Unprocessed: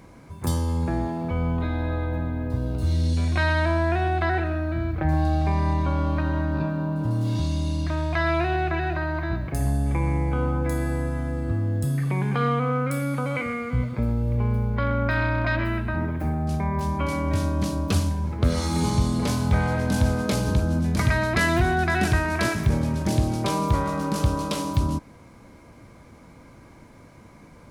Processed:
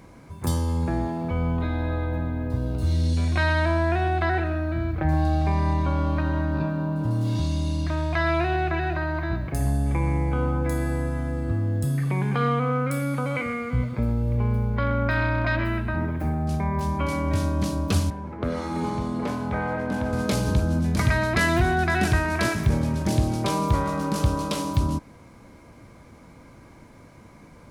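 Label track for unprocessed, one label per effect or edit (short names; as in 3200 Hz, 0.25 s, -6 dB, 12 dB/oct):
18.100000	20.130000	three-band isolator lows -12 dB, under 200 Hz, highs -15 dB, over 2400 Hz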